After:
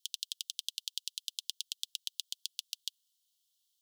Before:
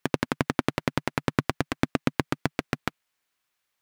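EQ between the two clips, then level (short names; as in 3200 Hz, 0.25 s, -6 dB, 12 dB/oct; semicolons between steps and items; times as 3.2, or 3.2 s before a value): steep high-pass 3000 Hz 96 dB/oct; +3.0 dB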